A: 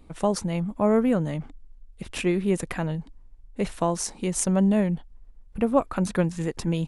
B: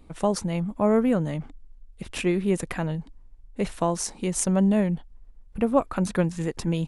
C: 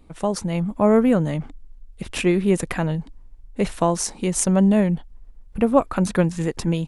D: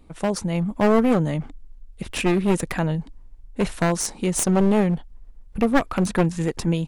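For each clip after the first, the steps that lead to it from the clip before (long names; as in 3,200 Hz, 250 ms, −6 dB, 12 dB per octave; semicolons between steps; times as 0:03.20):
no processing that can be heard
automatic gain control gain up to 5 dB
wavefolder on the positive side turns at −18 dBFS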